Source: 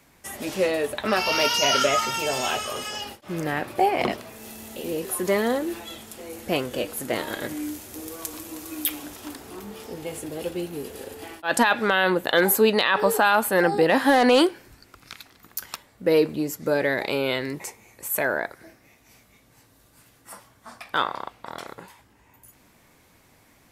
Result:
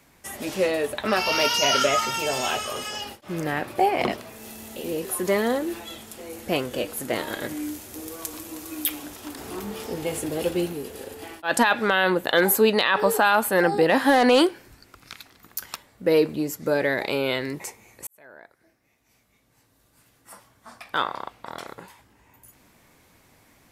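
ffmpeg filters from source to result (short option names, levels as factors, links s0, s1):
-filter_complex "[0:a]asettb=1/sr,asplit=3[s0][s1][s2];[s0]atrim=end=9.374[s3];[s1]atrim=start=9.37:end=10.73,asetpts=PTS-STARTPTS,afade=t=in:d=0.004:c=qsin,afade=t=out:st=1.356:d=0.004:c=qsin,acontrast=28[s4];[s2]atrim=start=10.726[s5];[s3][s4]acrossfade=d=0.004:c1=hsin:c2=qsin[s6];[s6][s5]acrossfade=d=0.004:c1=qsin:c2=hsin,asplit=2[s7][s8];[s7]atrim=end=18.07,asetpts=PTS-STARTPTS,afade=t=out:st=18.066:d=0.004:c=hsin[s9];[s8]atrim=start=18.07,asetpts=PTS-STARTPTS,afade=t=in:d=3.3[s10];[s9][s10]concat=n=2:v=0:a=1"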